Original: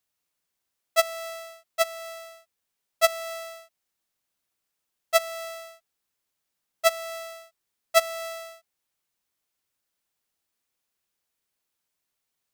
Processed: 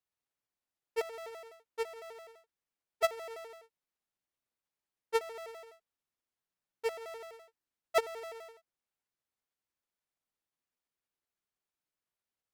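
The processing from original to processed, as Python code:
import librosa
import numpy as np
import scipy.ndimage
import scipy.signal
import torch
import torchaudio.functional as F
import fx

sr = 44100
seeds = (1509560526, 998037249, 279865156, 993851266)

y = fx.pitch_trill(x, sr, semitones=-6.5, every_ms=84)
y = fx.high_shelf(y, sr, hz=3200.0, db=-9.0)
y = y * librosa.db_to_amplitude(-7.5)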